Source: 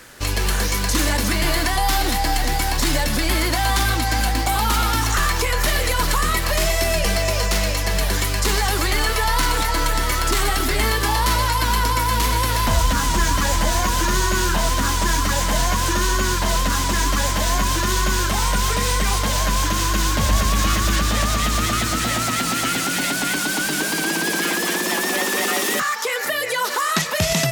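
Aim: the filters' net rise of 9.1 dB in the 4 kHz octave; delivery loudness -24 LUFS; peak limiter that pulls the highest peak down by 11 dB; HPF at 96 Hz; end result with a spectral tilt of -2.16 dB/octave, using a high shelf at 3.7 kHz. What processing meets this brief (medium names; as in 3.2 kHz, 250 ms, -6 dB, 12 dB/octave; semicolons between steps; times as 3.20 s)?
high-pass 96 Hz; treble shelf 3.7 kHz +3.5 dB; peaking EQ 4 kHz +9 dB; trim -6 dB; peak limiter -16.5 dBFS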